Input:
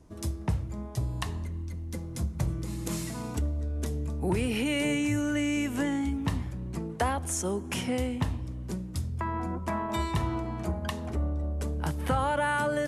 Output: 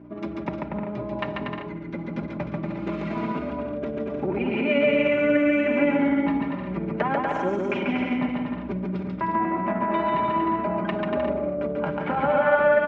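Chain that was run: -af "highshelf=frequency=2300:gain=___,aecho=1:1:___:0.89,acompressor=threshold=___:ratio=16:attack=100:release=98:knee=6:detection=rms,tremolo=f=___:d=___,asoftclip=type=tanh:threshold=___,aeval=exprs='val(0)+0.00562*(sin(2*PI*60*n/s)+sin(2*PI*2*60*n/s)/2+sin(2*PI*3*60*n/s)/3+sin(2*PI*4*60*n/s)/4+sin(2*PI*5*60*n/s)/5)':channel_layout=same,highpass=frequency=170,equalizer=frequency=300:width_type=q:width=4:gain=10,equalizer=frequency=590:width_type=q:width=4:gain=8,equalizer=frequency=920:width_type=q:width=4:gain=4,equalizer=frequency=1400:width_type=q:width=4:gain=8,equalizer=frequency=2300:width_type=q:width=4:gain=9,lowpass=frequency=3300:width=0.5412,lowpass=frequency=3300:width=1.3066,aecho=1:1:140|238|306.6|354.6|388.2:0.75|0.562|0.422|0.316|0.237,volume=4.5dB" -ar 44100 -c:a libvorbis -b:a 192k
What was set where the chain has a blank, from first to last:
-7.5, 5, -31dB, 17, 0.46, -24dB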